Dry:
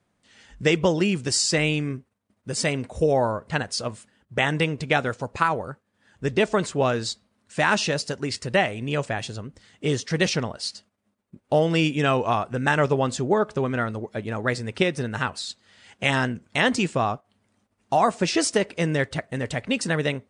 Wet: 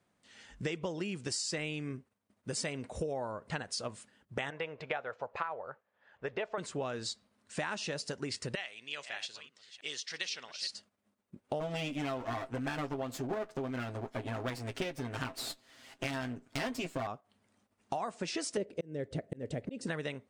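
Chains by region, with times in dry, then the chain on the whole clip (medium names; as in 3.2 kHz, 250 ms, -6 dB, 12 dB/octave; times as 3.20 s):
4.50–6.58 s: low-pass 2.5 kHz + resonant low shelf 390 Hz -10.5 dB, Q 1.5
8.55–10.69 s: chunks repeated in reverse 315 ms, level -13.5 dB + band-pass filter 3.9 kHz, Q 1.1
11.60–17.07 s: comb filter that takes the minimum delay 7.6 ms + doubling 17 ms -13.5 dB + small resonant body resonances 280/670 Hz, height 7 dB
18.57–19.87 s: resonant low shelf 700 Hz +12 dB, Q 1.5 + slow attack 662 ms
whole clip: bass shelf 120 Hz -7.5 dB; compression 6:1, threshold -31 dBFS; trim -3 dB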